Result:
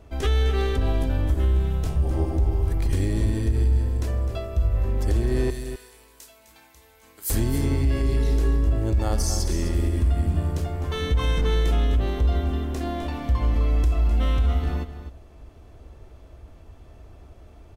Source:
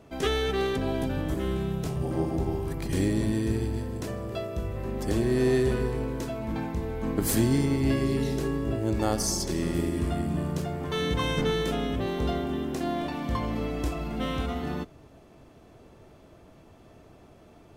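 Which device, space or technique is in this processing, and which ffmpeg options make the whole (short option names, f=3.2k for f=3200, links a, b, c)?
car stereo with a boomy subwoofer: -filter_complex "[0:a]asettb=1/sr,asplit=3[a][b][c];[a]atrim=end=5.504[d];[b]atrim=start=5.5:end=7.3,asetpts=PTS-STARTPTS,afade=t=in:d=0.004:c=qsin,afade=t=out:st=1.796:d=0.004:c=qsin,aderivative[e];[c]atrim=start=7.296[f];[d][e]acrossfade=d=0.004:c1=hsin:c2=qsin[g];[g][f]acrossfade=d=0.004:c1=qsin:c2=hsin,lowshelf=f=100:t=q:w=1.5:g=13.5,aecho=1:1:256:0.266,alimiter=limit=-13.5dB:level=0:latency=1:release=66"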